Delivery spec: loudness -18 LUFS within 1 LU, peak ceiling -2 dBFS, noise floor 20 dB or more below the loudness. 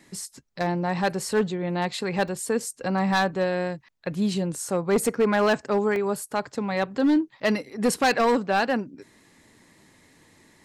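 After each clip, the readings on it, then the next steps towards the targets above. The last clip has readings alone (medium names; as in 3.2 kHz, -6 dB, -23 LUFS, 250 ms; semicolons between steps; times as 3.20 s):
clipped samples 1.4%; clipping level -15.5 dBFS; dropouts 3; longest dropout 1.2 ms; loudness -25.0 LUFS; peak level -15.5 dBFS; loudness target -18.0 LUFS
-> clip repair -15.5 dBFS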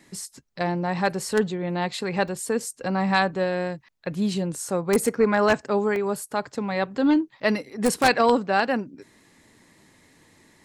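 clipped samples 0.0%; dropouts 3; longest dropout 1.2 ms
-> interpolate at 2.28/5.05/5.96 s, 1.2 ms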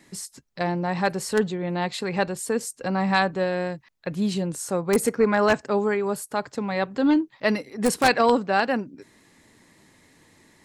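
dropouts 0; loudness -24.0 LUFS; peak level -6.5 dBFS; loudness target -18.0 LUFS
-> trim +6 dB; peak limiter -2 dBFS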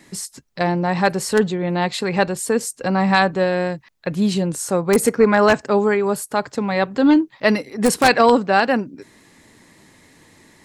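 loudness -18.5 LUFS; peak level -2.0 dBFS; noise floor -52 dBFS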